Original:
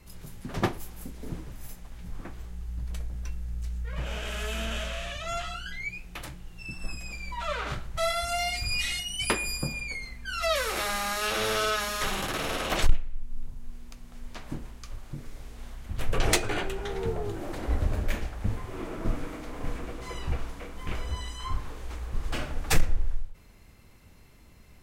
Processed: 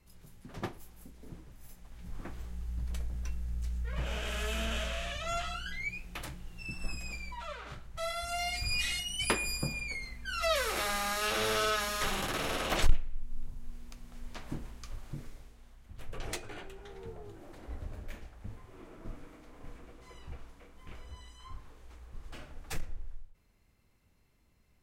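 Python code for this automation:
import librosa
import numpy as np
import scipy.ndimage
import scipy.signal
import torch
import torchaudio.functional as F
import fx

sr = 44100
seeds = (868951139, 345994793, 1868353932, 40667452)

y = fx.gain(x, sr, db=fx.line((1.58, -11.5), (2.29, -2.0), (7.14, -2.0), (7.6, -13.0), (8.68, -3.0), (15.21, -3.0), (15.62, -15.0)))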